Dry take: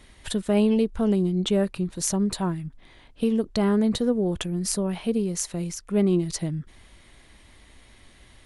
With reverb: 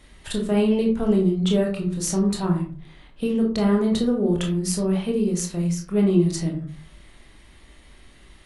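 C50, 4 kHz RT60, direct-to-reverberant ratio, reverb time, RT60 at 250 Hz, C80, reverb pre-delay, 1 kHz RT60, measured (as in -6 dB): 7.0 dB, 0.25 s, -0.5 dB, 0.45 s, 0.50 s, 11.5 dB, 21 ms, 0.40 s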